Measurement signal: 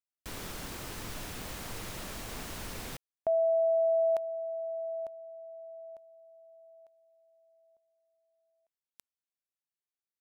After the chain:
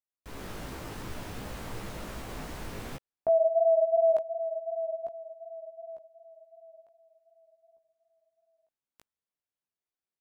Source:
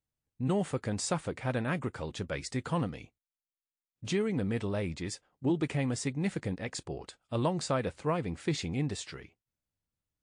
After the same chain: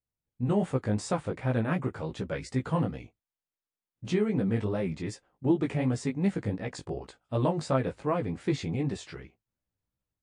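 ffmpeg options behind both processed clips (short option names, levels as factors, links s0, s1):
-af "highshelf=f=2200:g=-9.5,dynaudnorm=f=230:g=3:m=2.11,flanger=delay=15:depth=4.2:speed=2.7"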